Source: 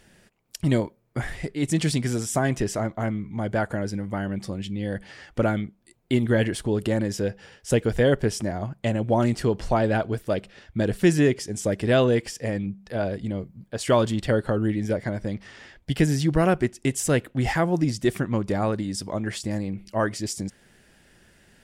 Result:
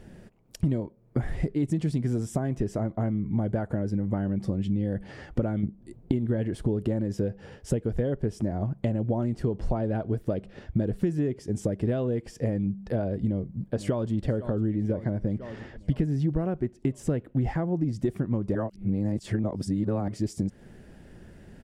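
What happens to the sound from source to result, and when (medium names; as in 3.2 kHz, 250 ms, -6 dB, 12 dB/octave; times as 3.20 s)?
5.63–6.12 s: bass shelf 500 Hz +9 dB
13.25–14.13 s: echo throw 500 ms, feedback 60%, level -16.5 dB
14.75–17.93 s: treble shelf 5.8 kHz -8 dB
18.55–20.08 s: reverse
whole clip: compression 10:1, threshold -33 dBFS; tilt shelf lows +9 dB; trim +2.5 dB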